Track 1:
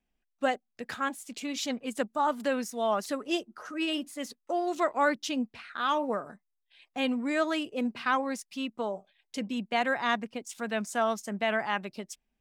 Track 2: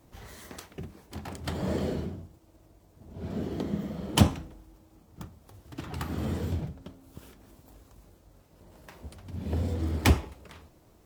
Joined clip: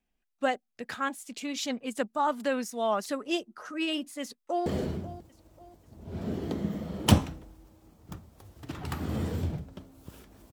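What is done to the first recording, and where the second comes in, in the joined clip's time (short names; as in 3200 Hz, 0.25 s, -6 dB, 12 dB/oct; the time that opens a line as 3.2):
track 1
4.21–4.66 echo throw 0.54 s, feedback 40%, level -15.5 dB
4.66 switch to track 2 from 1.75 s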